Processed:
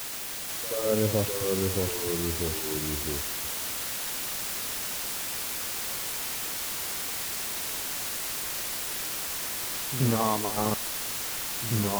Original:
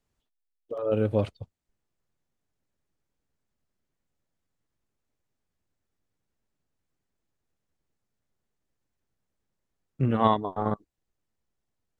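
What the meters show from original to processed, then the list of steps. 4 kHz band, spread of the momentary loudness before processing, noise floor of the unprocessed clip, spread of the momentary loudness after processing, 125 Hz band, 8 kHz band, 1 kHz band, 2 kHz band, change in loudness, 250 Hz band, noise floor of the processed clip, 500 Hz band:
+18.5 dB, 12 LU, -82 dBFS, 4 LU, +2.0 dB, n/a, -1.5 dB, +15.0 dB, -1.5 dB, +1.0 dB, -34 dBFS, +1.5 dB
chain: limiter -14.5 dBFS, peak gain reduction 8.5 dB; requantised 6-bit, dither triangular; reverse echo 79 ms -11 dB; echoes that change speed 0.483 s, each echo -2 st, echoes 3

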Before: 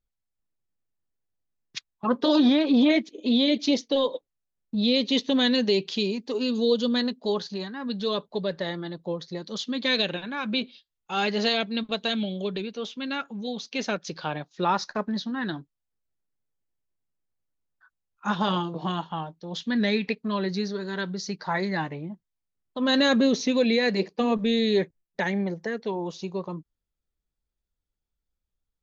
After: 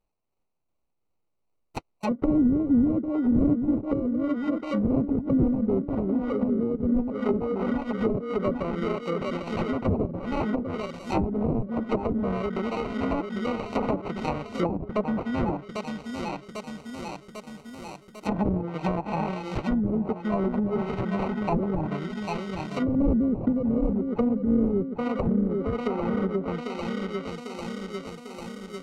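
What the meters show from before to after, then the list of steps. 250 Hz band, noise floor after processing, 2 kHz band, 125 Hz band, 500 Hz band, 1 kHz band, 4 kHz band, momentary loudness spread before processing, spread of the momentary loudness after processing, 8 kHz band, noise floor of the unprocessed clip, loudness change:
+1.5 dB, -75 dBFS, -8.0 dB, +6.0 dB, -1.0 dB, -1.0 dB, -17.5 dB, 12 LU, 12 LU, n/a, -84 dBFS, -1.0 dB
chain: high shelf 2700 Hz +6.5 dB; dark delay 0.797 s, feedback 64%, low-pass 1400 Hz, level -6.5 dB; sample-rate reducer 1700 Hz, jitter 0%; treble ducked by the level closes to 310 Hz, closed at -19.5 dBFS; tremolo 2.6 Hz, depth 30%; gain +2.5 dB

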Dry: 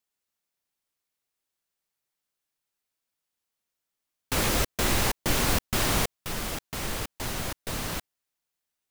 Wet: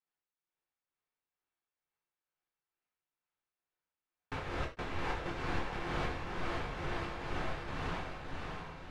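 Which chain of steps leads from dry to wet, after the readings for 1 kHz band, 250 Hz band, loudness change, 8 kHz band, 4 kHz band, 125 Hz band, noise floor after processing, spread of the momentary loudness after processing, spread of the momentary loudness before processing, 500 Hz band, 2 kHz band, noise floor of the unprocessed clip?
-6.0 dB, -9.0 dB, -11.5 dB, -28.0 dB, -15.5 dB, -8.5 dB, under -85 dBFS, 6 LU, 8 LU, -7.5 dB, -8.0 dB, -85 dBFS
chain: LPF 2100 Hz 12 dB/oct; bell 200 Hz -4.5 dB 1.9 oct; notch 610 Hz, Q 16; compressor 3:1, threshold -29 dBFS, peak gain reduction 6.5 dB; tremolo triangle 2.2 Hz, depth 70%; diffused feedback echo 0.613 s, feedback 50%, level -3 dB; non-linear reverb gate 0.12 s falling, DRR -1.5 dB; gain -4.5 dB

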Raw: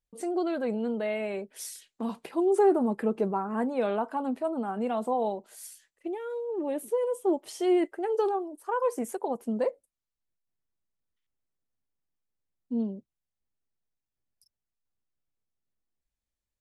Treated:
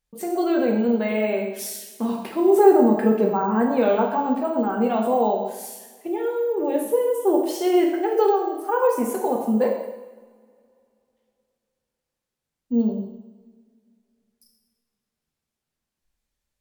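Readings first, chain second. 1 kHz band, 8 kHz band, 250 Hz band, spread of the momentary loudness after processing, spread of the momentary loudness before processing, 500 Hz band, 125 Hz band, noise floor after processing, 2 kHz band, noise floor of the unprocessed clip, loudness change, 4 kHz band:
+8.5 dB, +7.0 dB, +8.5 dB, 12 LU, 11 LU, +8.0 dB, n/a, -85 dBFS, +8.0 dB, under -85 dBFS, +8.0 dB, +8.0 dB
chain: two-slope reverb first 0.96 s, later 2.9 s, from -23 dB, DRR -0.5 dB; careless resampling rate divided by 2×, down none, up hold; gain +5 dB

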